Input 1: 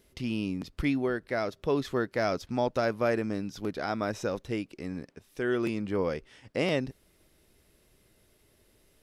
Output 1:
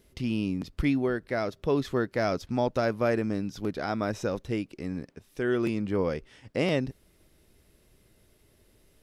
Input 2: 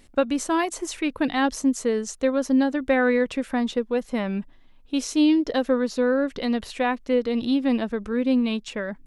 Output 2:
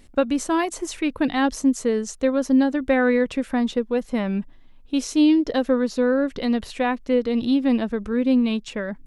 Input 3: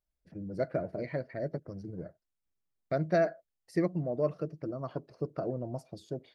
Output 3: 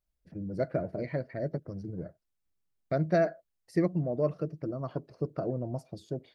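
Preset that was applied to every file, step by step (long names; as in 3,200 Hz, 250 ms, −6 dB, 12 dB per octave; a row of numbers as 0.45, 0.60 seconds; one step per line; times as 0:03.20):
low-shelf EQ 290 Hz +4.5 dB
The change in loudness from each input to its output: +1.5, +2.0, +1.5 LU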